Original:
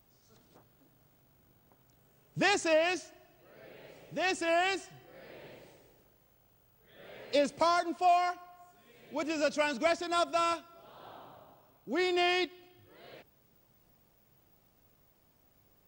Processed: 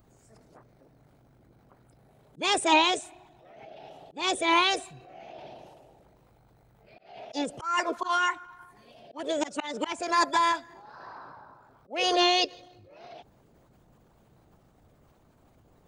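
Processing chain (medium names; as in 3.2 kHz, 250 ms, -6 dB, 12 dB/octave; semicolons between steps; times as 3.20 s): resonances exaggerated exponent 1.5; formant shift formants +5 st; slow attack 217 ms; trim +6 dB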